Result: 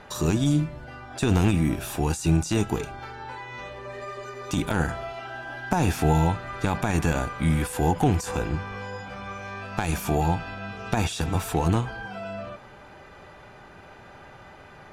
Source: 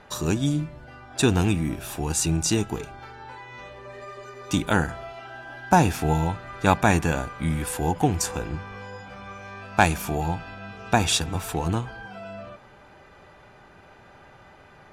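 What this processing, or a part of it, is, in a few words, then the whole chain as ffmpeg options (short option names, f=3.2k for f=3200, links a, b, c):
de-esser from a sidechain: -filter_complex "[0:a]asplit=2[a][b];[b]highpass=f=4.1k:p=1,apad=whole_len=658298[c];[a][c]sidechaincompress=threshold=-35dB:ratio=20:attack=0.97:release=21,volume=3.5dB"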